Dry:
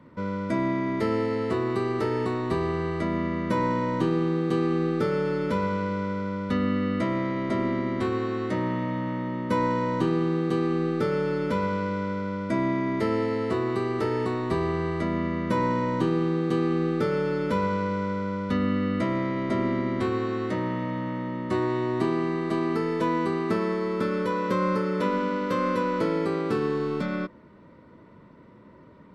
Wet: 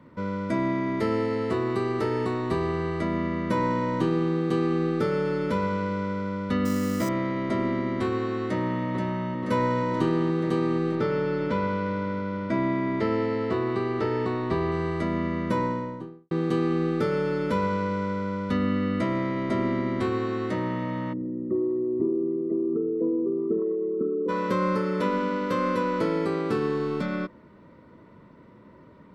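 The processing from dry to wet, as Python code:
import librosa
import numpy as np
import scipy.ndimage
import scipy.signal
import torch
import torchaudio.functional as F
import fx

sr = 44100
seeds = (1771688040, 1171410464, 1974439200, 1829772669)

y = fx.sample_hold(x, sr, seeds[0], rate_hz=7000.0, jitter_pct=0, at=(6.65, 7.09))
y = fx.echo_throw(y, sr, start_s=8.46, length_s=0.4, ms=480, feedback_pct=75, wet_db=-5.0)
y = fx.lowpass(y, sr, hz=4800.0, slope=12, at=(10.95, 14.72))
y = fx.studio_fade_out(y, sr, start_s=15.41, length_s=0.9)
y = fx.envelope_sharpen(y, sr, power=3.0, at=(21.12, 24.28), fade=0.02)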